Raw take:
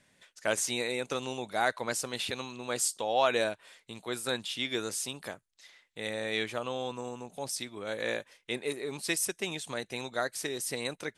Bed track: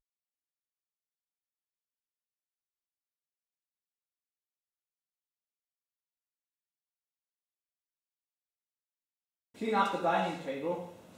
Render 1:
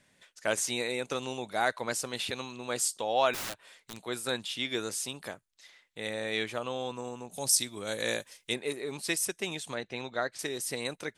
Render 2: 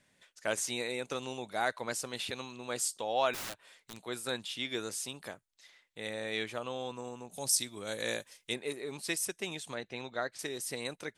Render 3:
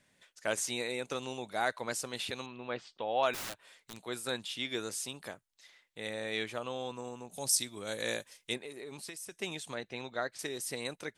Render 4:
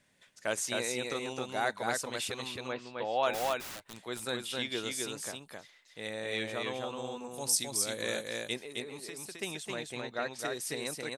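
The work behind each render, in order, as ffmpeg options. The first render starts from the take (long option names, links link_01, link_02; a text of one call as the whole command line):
ffmpeg -i in.wav -filter_complex "[0:a]asplit=3[link_01][link_02][link_03];[link_01]afade=type=out:start_time=3.33:duration=0.02[link_04];[link_02]aeval=exprs='(mod(39.8*val(0)+1,2)-1)/39.8':channel_layout=same,afade=type=in:start_time=3.33:duration=0.02,afade=type=out:start_time=4.03:duration=0.02[link_05];[link_03]afade=type=in:start_time=4.03:duration=0.02[link_06];[link_04][link_05][link_06]amix=inputs=3:normalize=0,asettb=1/sr,asplit=3[link_07][link_08][link_09];[link_07]atrim=end=7.314[link_10];[link_08]atrim=start=7.31:end=8.54,asetpts=PTS-STARTPTS,afade=type=in:duration=0.004:curve=qsin,afade=type=out:start_time=1.226:duration=0.004:curve=qsin,bass=frequency=250:gain=4,treble=frequency=4000:gain=13[link_11];[link_09]atrim=start=8.536[link_12];[link_10][link_11]acrossfade=duration=0.004:curve1=hsin:curve2=qsin[link_13];[link_13][link_12]acrossfade=duration=0.004:curve1=qsin:curve2=hsin,asettb=1/sr,asplit=3[link_14][link_15][link_16];[link_14]atrim=end=9.754[link_17];[link_15]atrim=start=9.75:end=10.39,asetpts=PTS-STARTPTS,afade=type=in:duration=0.004:curve=qsin,afade=type=out:start_time=0.636:duration=0.004:curve=qsin,lowpass=4300[link_18];[link_16]atrim=start=10.386[link_19];[link_17][link_18]acrossfade=duration=0.004:curve1=hsin:curve2=qsin[link_20];[link_20][link_19]acrossfade=duration=0.004:curve1=qsin:curve2=hsin" out.wav
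ffmpeg -i in.wav -af "volume=-3.5dB" out.wav
ffmpeg -i in.wav -filter_complex "[0:a]asettb=1/sr,asplit=3[link_01][link_02][link_03];[link_01]atrim=end=2.464[link_04];[link_02]atrim=start=2.46:end=3.23,asetpts=PTS-STARTPTS,afade=type=in:duration=0.004:curve=qsin,afade=type=out:start_time=0.766:duration=0.004:curve=qsin,lowpass=frequency=3300:width=0.5412,lowpass=frequency=3300:width=1.3066[link_05];[link_03]atrim=start=3.226[link_06];[link_04][link_05]acrossfade=duration=0.004:curve1=hsin:curve2=qsin[link_07];[link_07][link_06]acrossfade=duration=0.004:curve1=qsin:curve2=hsin,asplit=3[link_08][link_09][link_10];[link_08]afade=type=out:start_time=8.57:duration=0.02[link_11];[link_09]acompressor=threshold=-40dB:ratio=10:attack=3.2:release=140:knee=1:detection=peak,afade=type=in:start_time=8.57:duration=0.02,afade=type=out:start_time=9.31:duration=0.02[link_12];[link_10]afade=type=in:start_time=9.31:duration=0.02[link_13];[link_11][link_12][link_13]amix=inputs=3:normalize=0" out.wav
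ffmpeg -i in.wav -af "aecho=1:1:264:0.708" out.wav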